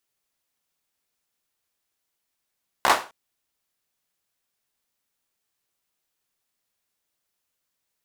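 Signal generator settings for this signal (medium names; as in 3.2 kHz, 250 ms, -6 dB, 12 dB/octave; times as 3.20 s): hand clap length 0.26 s, apart 15 ms, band 860 Hz, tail 0.32 s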